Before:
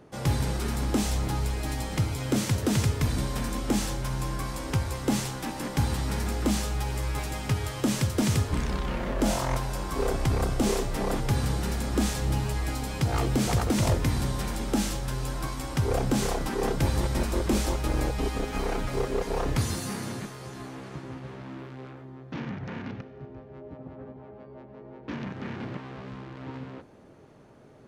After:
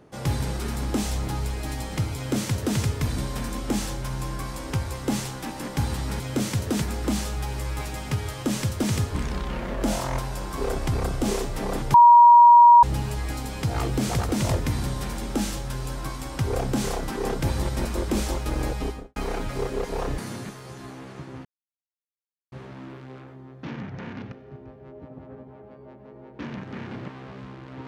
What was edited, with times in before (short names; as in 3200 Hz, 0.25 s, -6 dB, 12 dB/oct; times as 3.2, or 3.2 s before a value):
2.16–2.78 copy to 6.2
11.32–12.21 bleep 953 Hz -8 dBFS
18.18–18.54 studio fade out
19.56–19.94 cut
21.21 insert silence 1.07 s